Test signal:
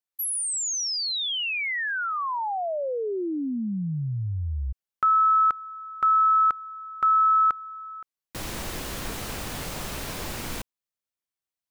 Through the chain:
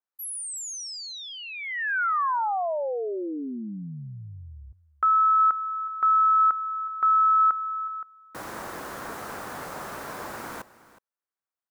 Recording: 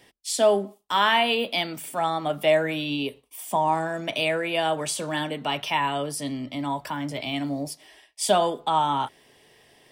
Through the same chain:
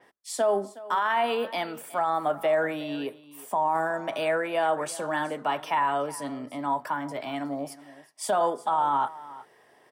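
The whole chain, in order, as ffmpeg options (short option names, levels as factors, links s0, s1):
-af "highpass=f=500:p=1,highshelf=f=2000:t=q:w=1.5:g=-10.5,alimiter=limit=0.119:level=0:latency=1:release=12,aecho=1:1:367:0.126,adynamicequalizer=threshold=0.00501:dfrequency=5800:dqfactor=0.7:tfrequency=5800:tqfactor=0.7:attack=5:release=100:ratio=0.375:range=1.5:mode=boostabove:tftype=highshelf,volume=1.26"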